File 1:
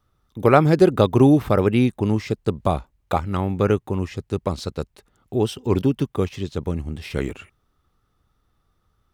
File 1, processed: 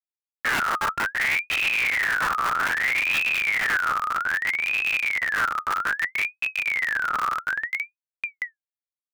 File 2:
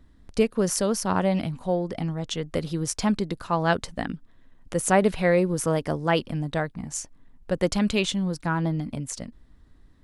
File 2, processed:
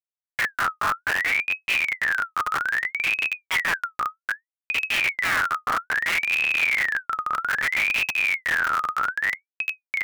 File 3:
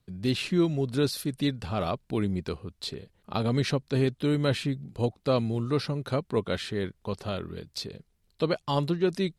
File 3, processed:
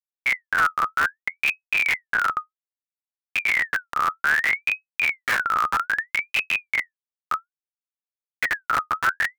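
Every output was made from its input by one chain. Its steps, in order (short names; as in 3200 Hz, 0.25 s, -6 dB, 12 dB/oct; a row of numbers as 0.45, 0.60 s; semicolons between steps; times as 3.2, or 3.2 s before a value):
octaver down 2 oct, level 0 dB; small resonant body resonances 1200/2100/3400 Hz, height 11 dB, ringing for 40 ms; spectral noise reduction 6 dB; bit-crush 7-bit; low-pass opened by the level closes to 630 Hz, open at -14.5 dBFS; on a send: diffused feedback echo 1.354 s, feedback 46%, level -6 dB; on the sum: expander -29 dBFS; in parallel at +2 dB: compressor 8:1, threshold -23 dBFS; on the sum: Schmitt trigger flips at -14 dBFS; limiter -18 dBFS; bell 86 Hz +5.5 dB 0.58 oct; ring modulator with a swept carrier 1900 Hz, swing 35%, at 0.62 Hz; match loudness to -23 LUFS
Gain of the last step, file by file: -1.5, +1.0, +3.5 dB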